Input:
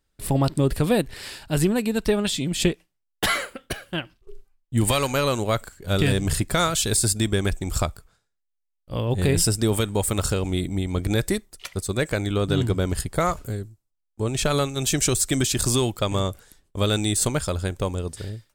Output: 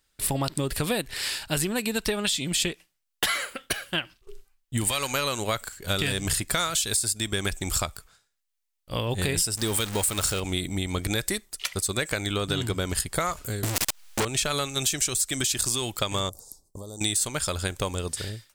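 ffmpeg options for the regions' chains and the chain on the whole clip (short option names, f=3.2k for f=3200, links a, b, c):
-filter_complex "[0:a]asettb=1/sr,asplit=3[a][b][c];[a]atrim=end=9.574[d];[b]atrim=start=9.57:end=10.4,asetpts=PTS-STARTPTS,afade=t=in:d=0.004:c=qsin,afade=t=out:st=0.826:d=0.004:c=qsin,aeval=exprs='val(0)+0.5*0.0447*sgn(val(0))':c=same,acrusher=bits=9:mode=log:mix=0:aa=0.000001[e];[c]atrim=start=10.396[f];[d][e]acrossfade=d=0.004:c1=hsin:c2=qsin[g];[g][f]acrossfade=d=0.004:c1=qsin:c2=hsin,asettb=1/sr,asplit=3[h][i][j];[h]atrim=end=13.634[k];[i]atrim=start=13.63:end=14.25,asetpts=PTS-STARTPTS,afade=t=in:d=0.004:c=qsin,afade=t=out:st=0.616:d=0.004:c=qsin,aeval=exprs='val(0)+0.5*0.0282*sgn(val(0))':c=same,asplit=2[l][m];[m]highpass=f=720:p=1,volume=40dB,asoftclip=type=tanh:threshold=-12.5dB[n];[l][n]amix=inputs=2:normalize=0,lowpass=f=5.6k:p=1,volume=-6dB[o];[j]atrim=start=14.246[p];[k][o]acrossfade=d=0.004:c1=hsin:c2=qsin[q];[q][p]acrossfade=d=0.004:c1=qsin:c2=hsin,asettb=1/sr,asplit=3[r][s][t];[r]atrim=end=16.294[u];[s]atrim=start=16.29:end=17.01,asetpts=PTS-STARTPTS,afade=t=in:d=0.004:c=qsin,afade=t=out:st=0.716:d=0.004:c=qsin,acompressor=threshold=-32dB:ratio=20:attack=3.2:release=140:knee=1:detection=peak,asuperstop=centerf=2200:order=8:qfactor=0.57[v];[t]atrim=start=17.006[w];[u][v]acrossfade=d=0.004:c1=hsin:c2=qsin[x];[x][w]acrossfade=d=0.004:c1=qsin:c2=hsin,tiltshelf=f=970:g=-6,acompressor=threshold=-26dB:ratio=6,volume=3dB"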